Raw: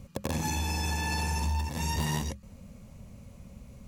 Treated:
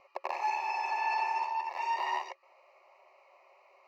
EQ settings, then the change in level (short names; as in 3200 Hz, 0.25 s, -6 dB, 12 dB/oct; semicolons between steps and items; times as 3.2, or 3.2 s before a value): brick-wall FIR high-pass 360 Hz; air absorption 410 m; fixed phaser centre 2300 Hz, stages 8; +8.5 dB